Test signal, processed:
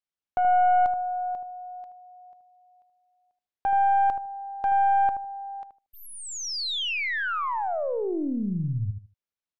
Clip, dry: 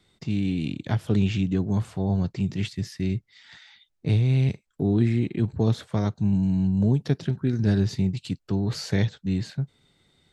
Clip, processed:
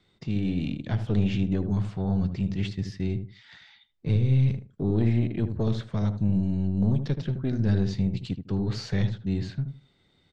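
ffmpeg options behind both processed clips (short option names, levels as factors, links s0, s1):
-filter_complex "[0:a]aeval=exprs='(tanh(5.62*val(0)+0.45)-tanh(0.45))/5.62':c=same,lowpass=5100,asplit=2[s0][s1];[s1]adelay=77,lowpass=f=890:p=1,volume=0.447,asplit=2[s2][s3];[s3]adelay=77,lowpass=f=890:p=1,volume=0.22,asplit=2[s4][s5];[s5]adelay=77,lowpass=f=890:p=1,volume=0.22[s6];[s0][s2][s4][s6]amix=inputs=4:normalize=0"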